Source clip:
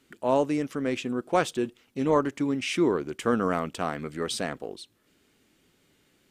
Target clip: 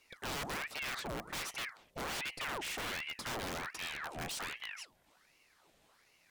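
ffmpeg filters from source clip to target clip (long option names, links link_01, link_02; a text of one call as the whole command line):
ffmpeg -i in.wav -af "aeval=exprs='(mod(15*val(0)+1,2)-1)/15':channel_layout=same,bandreject=frequency=106.7:width_type=h:width=4,bandreject=frequency=213.4:width_type=h:width=4,bandreject=frequency=320.1:width_type=h:width=4,bandreject=frequency=426.8:width_type=h:width=4,bandreject=frequency=533.5:width_type=h:width=4,bandreject=frequency=640.2:width_type=h:width=4,bandreject=frequency=746.9:width_type=h:width=4,asoftclip=type=tanh:threshold=-34.5dB,aeval=exprs='val(0)*sin(2*PI*1400*n/s+1400*0.8/1.3*sin(2*PI*1.3*n/s))':channel_layout=same" out.wav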